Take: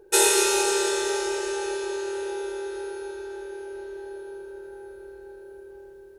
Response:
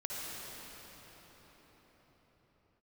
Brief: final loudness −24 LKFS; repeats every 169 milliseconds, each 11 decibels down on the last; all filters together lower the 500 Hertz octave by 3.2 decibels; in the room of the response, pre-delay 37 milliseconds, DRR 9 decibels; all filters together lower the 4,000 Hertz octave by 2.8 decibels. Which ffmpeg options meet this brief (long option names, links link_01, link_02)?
-filter_complex "[0:a]equalizer=frequency=500:width_type=o:gain=-4.5,equalizer=frequency=4000:width_type=o:gain=-3.5,aecho=1:1:169|338|507:0.282|0.0789|0.0221,asplit=2[link_01][link_02];[1:a]atrim=start_sample=2205,adelay=37[link_03];[link_02][link_03]afir=irnorm=-1:irlink=0,volume=-12dB[link_04];[link_01][link_04]amix=inputs=2:normalize=0,volume=1.5dB"